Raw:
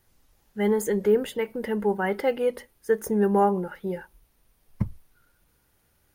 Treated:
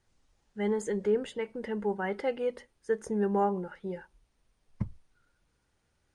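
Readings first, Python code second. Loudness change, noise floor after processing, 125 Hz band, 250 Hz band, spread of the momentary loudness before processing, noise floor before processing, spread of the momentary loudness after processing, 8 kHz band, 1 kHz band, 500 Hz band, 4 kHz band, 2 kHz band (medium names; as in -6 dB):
-6.5 dB, -75 dBFS, -6.5 dB, -6.5 dB, 11 LU, -67 dBFS, 11 LU, -8.5 dB, -6.5 dB, -6.5 dB, -6.5 dB, -6.5 dB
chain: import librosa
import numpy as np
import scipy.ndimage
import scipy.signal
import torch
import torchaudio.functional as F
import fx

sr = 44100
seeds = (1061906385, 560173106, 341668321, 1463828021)

y = scipy.signal.sosfilt(scipy.signal.butter(6, 8800.0, 'lowpass', fs=sr, output='sos'), x)
y = y * 10.0 ** (-6.5 / 20.0)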